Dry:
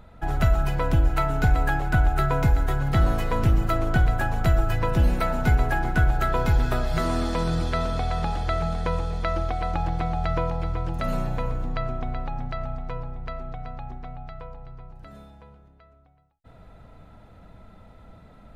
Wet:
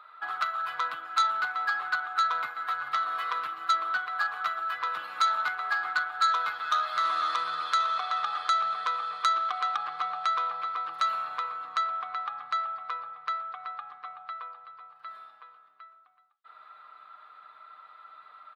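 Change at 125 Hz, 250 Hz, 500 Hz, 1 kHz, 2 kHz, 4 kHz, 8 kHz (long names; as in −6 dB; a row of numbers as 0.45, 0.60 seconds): below −40 dB, below −30 dB, −18.0 dB, +2.5 dB, +1.0 dB, +4.0 dB, −2.5 dB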